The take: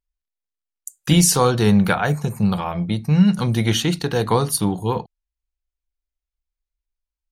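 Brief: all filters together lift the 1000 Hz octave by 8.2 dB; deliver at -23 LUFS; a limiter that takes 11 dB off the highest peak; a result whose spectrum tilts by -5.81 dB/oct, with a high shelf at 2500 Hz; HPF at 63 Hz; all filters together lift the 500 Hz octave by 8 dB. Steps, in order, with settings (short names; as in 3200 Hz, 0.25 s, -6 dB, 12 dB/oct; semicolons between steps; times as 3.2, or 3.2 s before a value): HPF 63 Hz; bell 500 Hz +7.5 dB; bell 1000 Hz +8.5 dB; high shelf 2500 Hz -4.5 dB; gain -4.5 dB; limiter -11.5 dBFS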